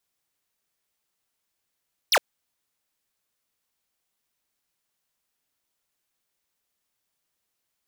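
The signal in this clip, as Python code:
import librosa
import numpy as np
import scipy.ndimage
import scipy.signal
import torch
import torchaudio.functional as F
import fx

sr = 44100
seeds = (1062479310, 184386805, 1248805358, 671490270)

y = fx.laser_zap(sr, level_db=-18, start_hz=6300.0, end_hz=440.0, length_s=0.06, wave='square')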